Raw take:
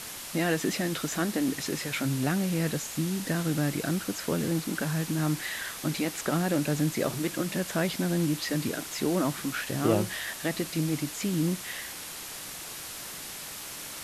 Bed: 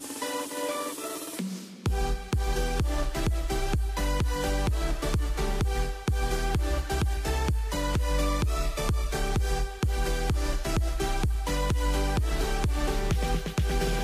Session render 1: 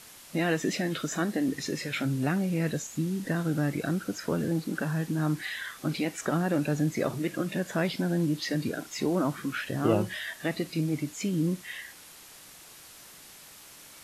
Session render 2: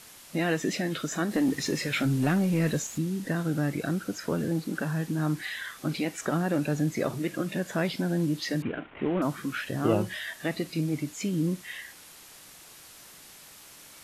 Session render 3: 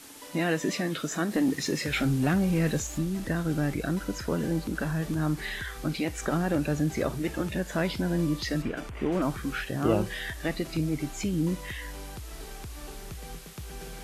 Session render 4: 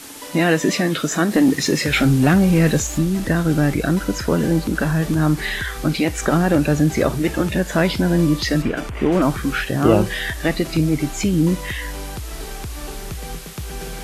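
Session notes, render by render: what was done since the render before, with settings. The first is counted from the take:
noise print and reduce 10 dB
1.31–2.98 sample leveller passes 1; 8.62–9.22 CVSD 16 kbps
add bed -14.5 dB
gain +10.5 dB; limiter -1 dBFS, peak gain reduction 0.5 dB

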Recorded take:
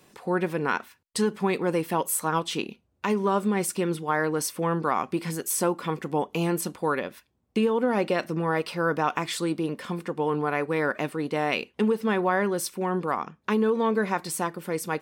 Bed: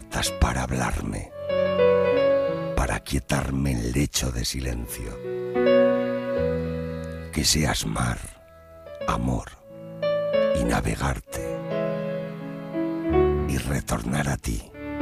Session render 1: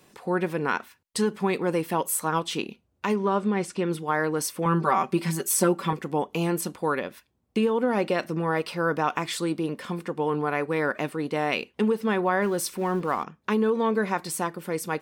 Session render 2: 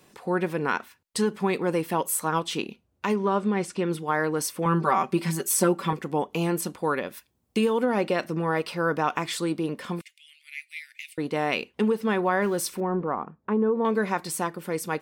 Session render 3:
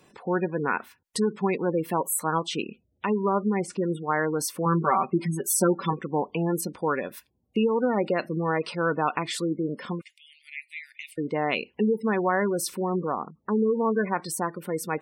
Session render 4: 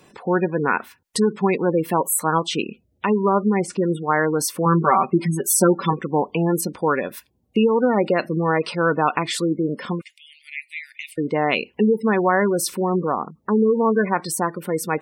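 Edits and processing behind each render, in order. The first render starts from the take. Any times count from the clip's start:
3.16–3.9 air absorption 84 m; 4.65–5.93 comb 5.2 ms, depth 96%; 12.42–13.24 G.711 law mismatch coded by mu
7.06–7.84 high shelf 6600 Hz -> 3300 Hz +9.5 dB; 10.01–11.18 Chebyshev high-pass 2100 Hz, order 6; 12.8–13.85 LPF 1100 Hz
spectral gate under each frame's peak -20 dB strong
gain +6 dB

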